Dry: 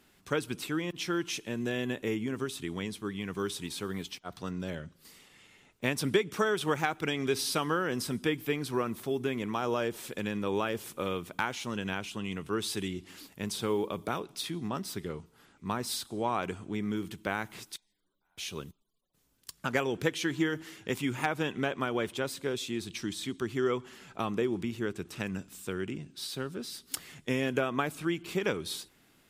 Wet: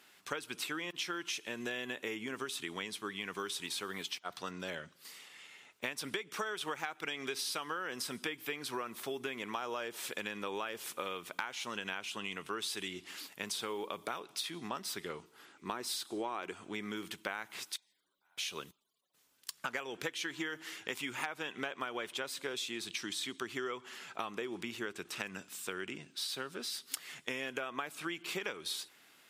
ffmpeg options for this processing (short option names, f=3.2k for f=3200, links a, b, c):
-filter_complex "[0:a]asettb=1/sr,asplit=3[a][b][c];[a]atrim=end=15.194[d];[b]atrim=start=15.19:end=16.53,asetpts=PTS-STARTPTS,afade=t=in:d=0.004:c=qsin,afade=t=out:st=1.336:d=0.004:c=qsin,equalizer=f=340:w=2.3:g=8[e];[c]atrim=start=16.526[f];[d][e]acrossfade=d=0.004:c1=hsin:c2=qsin[g];[g][f]acrossfade=d=0.004:c1=qsin:c2=hsin,highpass=f=1.3k:p=1,highshelf=f=4.9k:g=-5.5,acompressor=threshold=-42dB:ratio=6,volume=7dB"